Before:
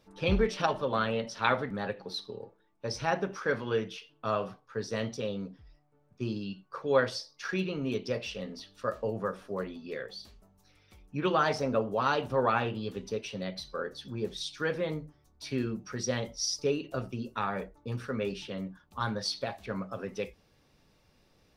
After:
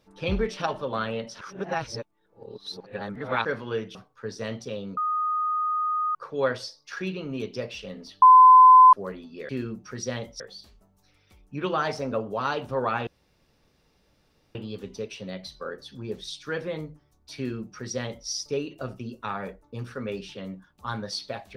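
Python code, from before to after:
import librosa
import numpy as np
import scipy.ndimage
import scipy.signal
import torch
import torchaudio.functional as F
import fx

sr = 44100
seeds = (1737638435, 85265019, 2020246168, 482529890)

y = fx.edit(x, sr, fx.reverse_span(start_s=1.41, length_s=2.04),
    fx.cut(start_s=3.95, length_s=0.52),
    fx.bleep(start_s=5.49, length_s=1.18, hz=1240.0, db=-23.0),
    fx.bleep(start_s=8.74, length_s=0.71, hz=1020.0, db=-8.5),
    fx.insert_room_tone(at_s=12.68, length_s=1.48),
    fx.duplicate(start_s=15.5, length_s=0.91, to_s=10.01), tone=tone)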